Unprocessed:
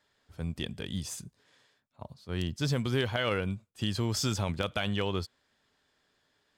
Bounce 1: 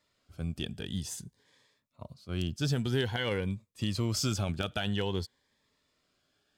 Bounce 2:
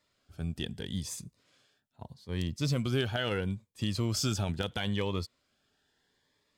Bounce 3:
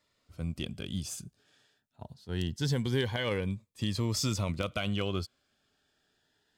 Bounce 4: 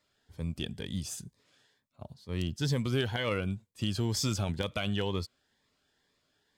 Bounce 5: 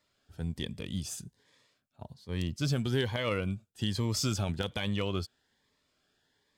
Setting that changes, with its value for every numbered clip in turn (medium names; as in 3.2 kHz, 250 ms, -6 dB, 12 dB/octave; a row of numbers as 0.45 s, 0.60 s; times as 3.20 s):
Shepard-style phaser, rate: 0.51 Hz, 0.76 Hz, 0.23 Hz, 2.1 Hz, 1.2 Hz